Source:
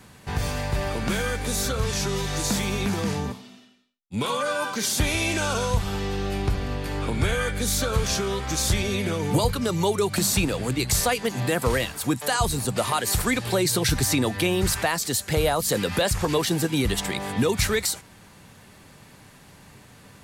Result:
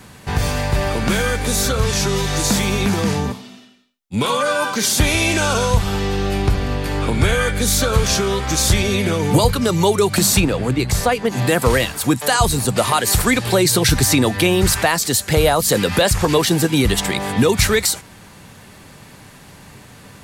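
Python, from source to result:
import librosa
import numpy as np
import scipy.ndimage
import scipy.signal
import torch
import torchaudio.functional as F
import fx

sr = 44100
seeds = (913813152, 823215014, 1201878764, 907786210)

y = fx.high_shelf(x, sr, hz=fx.line((10.39, 4400.0), (11.31, 2300.0)), db=-10.5, at=(10.39, 11.31), fade=0.02)
y = y * 10.0 ** (7.5 / 20.0)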